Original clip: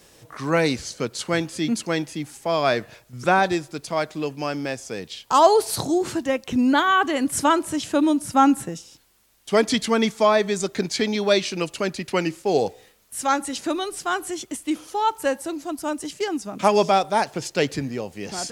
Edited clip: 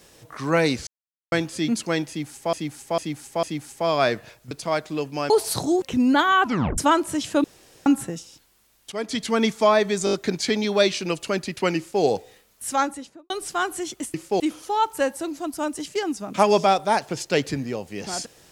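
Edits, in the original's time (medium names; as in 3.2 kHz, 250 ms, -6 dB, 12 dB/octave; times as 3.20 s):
0.87–1.32 s: mute
2.08–2.53 s: loop, 4 plays
3.16–3.76 s: delete
4.55–5.52 s: delete
6.04–6.41 s: delete
7.01 s: tape stop 0.36 s
8.03–8.45 s: room tone
9.51–10.04 s: fade in, from -15.5 dB
10.64 s: stutter 0.02 s, 5 plays
12.28–12.54 s: copy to 14.65 s
13.22–13.81 s: studio fade out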